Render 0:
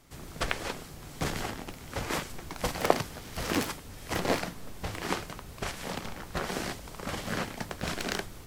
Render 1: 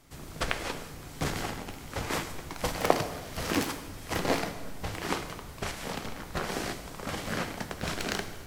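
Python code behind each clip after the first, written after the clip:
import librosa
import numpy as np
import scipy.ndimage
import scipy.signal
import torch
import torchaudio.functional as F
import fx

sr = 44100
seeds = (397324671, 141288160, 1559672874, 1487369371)

y = fx.rev_plate(x, sr, seeds[0], rt60_s=1.4, hf_ratio=0.8, predelay_ms=0, drr_db=8.5)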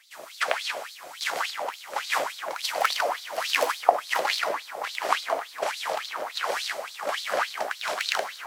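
y = fx.echo_wet_lowpass(x, sr, ms=985, feedback_pct=47, hz=1300.0, wet_db=-4)
y = fx.filter_lfo_highpass(y, sr, shape='sine', hz=3.5, low_hz=560.0, high_hz=4200.0, q=5.3)
y = y * 10.0 ** (1.5 / 20.0)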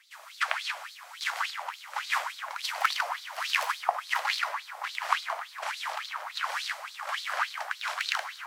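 y = scipy.signal.sosfilt(scipy.signal.butter(4, 930.0, 'highpass', fs=sr, output='sos'), x)
y = fx.high_shelf(y, sr, hz=3700.0, db=-7.0)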